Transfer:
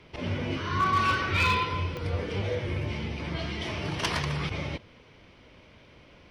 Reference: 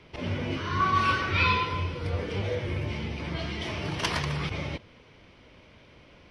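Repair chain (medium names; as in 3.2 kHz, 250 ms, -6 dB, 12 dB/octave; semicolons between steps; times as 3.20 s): clip repair -18.5 dBFS; de-click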